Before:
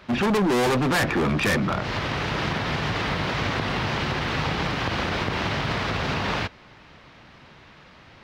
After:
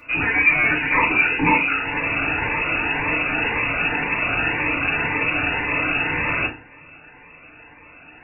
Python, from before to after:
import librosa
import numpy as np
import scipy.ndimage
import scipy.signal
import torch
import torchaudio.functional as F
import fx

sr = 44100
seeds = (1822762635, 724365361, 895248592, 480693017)

y = fx.freq_invert(x, sr, carrier_hz=2700)
y = fx.rev_fdn(y, sr, rt60_s=0.37, lf_ratio=1.4, hf_ratio=0.7, size_ms=20.0, drr_db=-3.0)
y = fx.notch_cascade(y, sr, direction='rising', hz=1.9)
y = y * 10.0 ** (1.5 / 20.0)